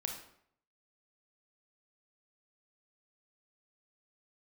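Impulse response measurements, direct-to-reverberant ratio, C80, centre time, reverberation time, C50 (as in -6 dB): 2.0 dB, 9.0 dB, 27 ms, 0.65 s, 5.5 dB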